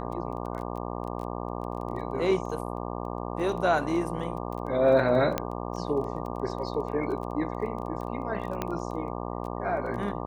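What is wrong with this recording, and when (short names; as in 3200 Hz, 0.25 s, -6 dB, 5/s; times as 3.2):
buzz 60 Hz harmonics 20 -34 dBFS
crackle 16/s -36 dBFS
5.38 pop -12 dBFS
8.62 pop -15 dBFS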